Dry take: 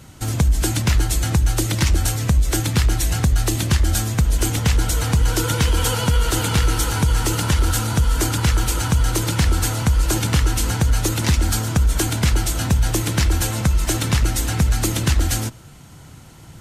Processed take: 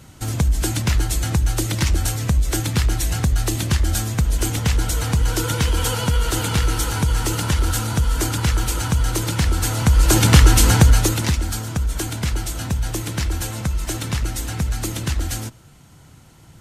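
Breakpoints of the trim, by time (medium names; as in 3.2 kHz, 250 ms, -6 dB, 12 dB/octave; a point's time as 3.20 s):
9.58 s -1.5 dB
10.30 s +7 dB
10.80 s +7 dB
11.46 s -5 dB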